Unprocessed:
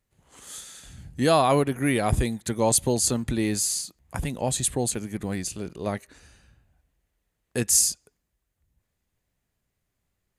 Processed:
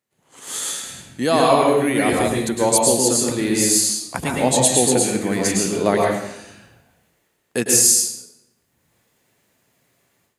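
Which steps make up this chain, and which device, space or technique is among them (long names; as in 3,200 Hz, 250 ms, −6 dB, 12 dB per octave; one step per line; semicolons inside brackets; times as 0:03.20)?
far laptop microphone (convolution reverb RT60 0.75 s, pre-delay 101 ms, DRR −2 dB; high-pass filter 200 Hz 12 dB per octave; automatic gain control gain up to 15 dB)
0:03.80–0:05.30: high-shelf EQ 12,000 Hz −5 dB
level −1 dB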